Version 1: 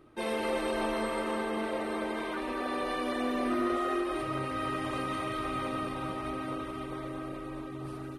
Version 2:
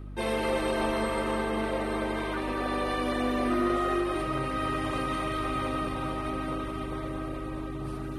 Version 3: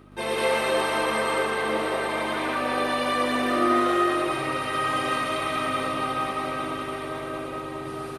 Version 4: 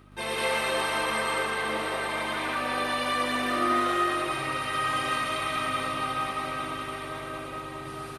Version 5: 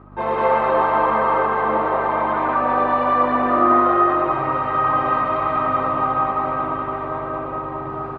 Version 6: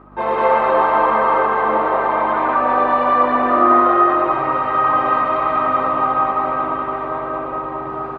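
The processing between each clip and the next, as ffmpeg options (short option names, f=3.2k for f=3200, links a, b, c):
-af "areverse,acompressor=mode=upward:threshold=-37dB:ratio=2.5,areverse,aeval=exprs='val(0)+0.00794*(sin(2*PI*50*n/s)+sin(2*PI*2*50*n/s)/2+sin(2*PI*3*50*n/s)/3+sin(2*PI*4*50*n/s)/4+sin(2*PI*5*50*n/s)/5)':c=same,volume=3dB"
-filter_complex "[0:a]highpass=f=510:p=1,asplit=2[a][b];[b]aecho=0:1:119.5|192.4:0.891|1[c];[a][c]amix=inputs=2:normalize=0,volume=3.5dB"
-af "equalizer=f=390:t=o:w=2.3:g=-7"
-af "lowpass=f=1k:t=q:w=2,volume=8.5dB"
-af "equalizer=f=91:t=o:w=1.8:g=-9.5,volume=3dB"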